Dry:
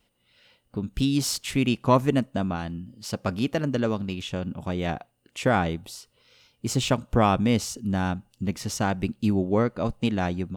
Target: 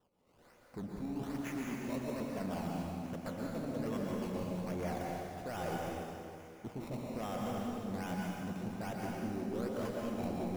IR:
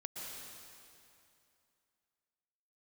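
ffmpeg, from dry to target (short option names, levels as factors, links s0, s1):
-filter_complex "[0:a]lowpass=f=2200:w=0.5412,lowpass=f=2200:w=1.3066,aemphasis=mode=production:type=bsi,areverse,acompressor=threshold=0.0224:ratio=6,areverse,asoftclip=type=hard:threshold=0.015,acrossover=split=830[s0][s1];[s1]acrusher=samples=19:mix=1:aa=0.000001:lfo=1:lforange=19:lforate=1.2[s2];[s0][s2]amix=inputs=2:normalize=0[s3];[1:a]atrim=start_sample=2205[s4];[s3][s4]afir=irnorm=-1:irlink=0,volume=1.58"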